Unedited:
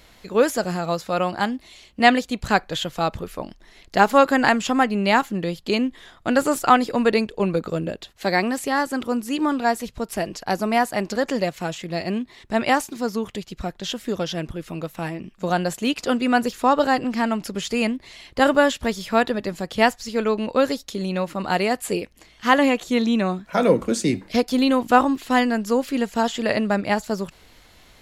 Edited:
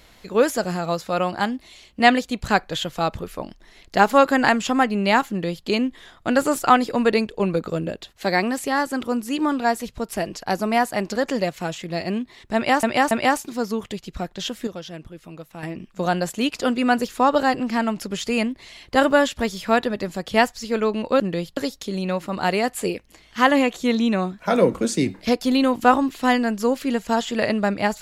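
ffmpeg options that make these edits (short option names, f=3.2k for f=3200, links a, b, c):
-filter_complex "[0:a]asplit=7[a][b][c][d][e][f][g];[a]atrim=end=12.832[h];[b]atrim=start=12.548:end=12.832[i];[c]atrim=start=12.548:end=14.112[j];[d]atrim=start=14.108:end=15.072,asetpts=PTS-STARTPTS,volume=-8.5dB[k];[e]atrim=start=15.068:end=20.642[l];[f]atrim=start=5.298:end=5.672[m];[g]atrim=start=20.638[n];[h][i]acrossfade=d=0.004:c1=hsin:c2=hsin[o];[o][j]acrossfade=d=0.004:c1=hsin:c2=hsin[p];[p][k]acrossfade=d=0.004:c1=hsin:c2=hsin[q];[q][l]acrossfade=d=0.004:c1=hsin:c2=hsin[r];[r][m]acrossfade=d=0.004:c1=hsin:c2=hsin[s];[s][n]acrossfade=d=0.004:c1=hsin:c2=hsin"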